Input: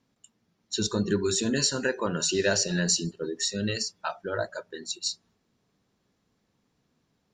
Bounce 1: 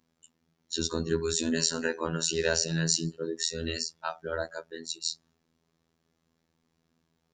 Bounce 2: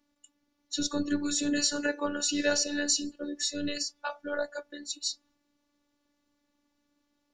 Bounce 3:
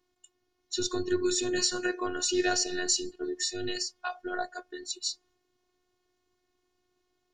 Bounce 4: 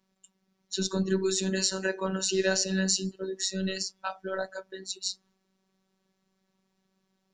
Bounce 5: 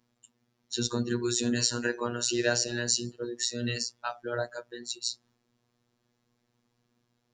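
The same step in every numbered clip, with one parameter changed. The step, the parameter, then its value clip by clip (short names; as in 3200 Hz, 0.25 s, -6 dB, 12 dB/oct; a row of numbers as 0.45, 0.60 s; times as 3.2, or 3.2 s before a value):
robotiser, frequency: 82, 290, 360, 190, 120 Hz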